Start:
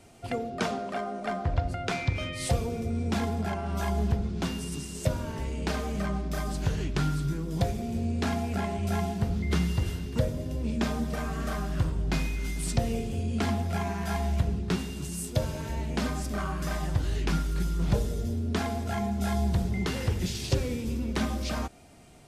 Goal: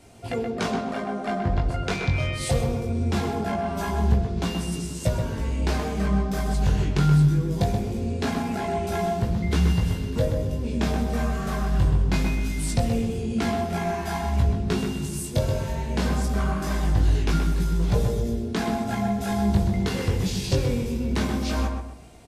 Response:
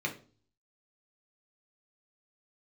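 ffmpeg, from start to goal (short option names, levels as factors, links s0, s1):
-filter_complex "[0:a]flanger=delay=17.5:depth=3.5:speed=0.22,asplit=2[s0][s1];[s1]adelay=127,lowpass=f=2300:p=1,volume=0.596,asplit=2[s2][s3];[s3]adelay=127,lowpass=f=2300:p=1,volume=0.34,asplit=2[s4][s5];[s5]adelay=127,lowpass=f=2300:p=1,volume=0.34,asplit=2[s6][s7];[s7]adelay=127,lowpass=f=2300:p=1,volume=0.34[s8];[s0][s2][s4][s6][s8]amix=inputs=5:normalize=0,asplit=2[s9][s10];[1:a]atrim=start_sample=2205,asetrate=22050,aresample=44100[s11];[s10][s11]afir=irnorm=-1:irlink=0,volume=0.0794[s12];[s9][s12]amix=inputs=2:normalize=0,volume=2.11"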